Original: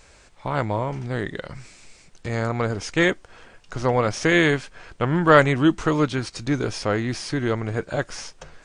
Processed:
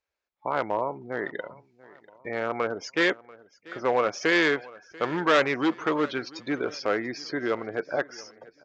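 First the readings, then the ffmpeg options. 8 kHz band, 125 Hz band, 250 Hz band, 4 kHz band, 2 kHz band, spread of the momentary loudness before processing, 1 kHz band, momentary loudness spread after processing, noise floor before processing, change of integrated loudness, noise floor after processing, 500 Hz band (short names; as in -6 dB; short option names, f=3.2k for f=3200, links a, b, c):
-8.5 dB, -18.0 dB, -6.5 dB, -2.5 dB, -3.0 dB, 18 LU, -3.5 dB, 16 LU, -52 dBFS, -4.5 dB, -80 dBFS, -3.5 dB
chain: -af "afftdn=nr=33:nf=-35,aresample=16000,asoftclip=type=hard:threshold=-15dB,aresample=44100,highpass=370,lowpass=5.2k,aecho=1:1:689|1378|2067:0.0841|0.0345|0.0141"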